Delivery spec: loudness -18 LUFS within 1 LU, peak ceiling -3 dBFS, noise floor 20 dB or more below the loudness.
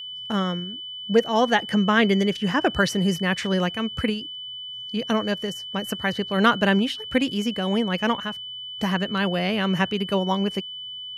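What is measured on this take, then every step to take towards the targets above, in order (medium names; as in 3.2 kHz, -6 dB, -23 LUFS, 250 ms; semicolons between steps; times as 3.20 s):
steady tone 3 kHz; tone level -33 dBFS; loudness -23.5 LUFS; peak level -6.0 dBFS; loudness target -18.0 LUFS
-> band-stop 3 kHz, Q 30; trim +5.5 dB; peak limiter -3 dBFS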